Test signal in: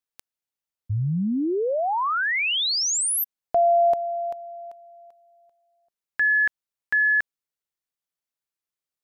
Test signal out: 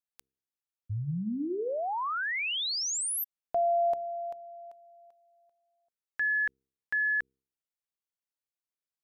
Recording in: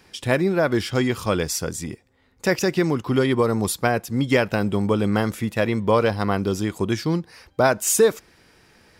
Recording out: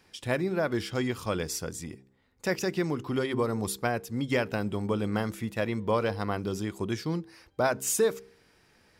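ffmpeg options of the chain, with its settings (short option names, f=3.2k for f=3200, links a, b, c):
-af "bandreject=f=66.08:t=h:w=4,bandreject=f=132.16:t=h:w=4,bandreject=f=198.24:t=h:w=4,bandreject=f=264.32:t=h:w=4,bandreject=f=330.4:t=h:w=4,bandreject=f=396.48:t=h:w=4,bandreject=f=462.56:t=h:w=4,volume=-8dB"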